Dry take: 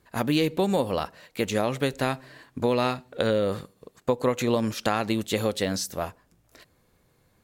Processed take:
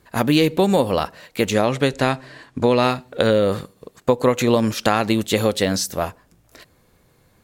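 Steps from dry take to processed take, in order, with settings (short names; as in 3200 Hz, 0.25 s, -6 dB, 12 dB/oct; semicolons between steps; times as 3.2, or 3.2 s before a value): 1.55–2.83 LPF 9200 Hz 12 dB/oct; gain +7 dB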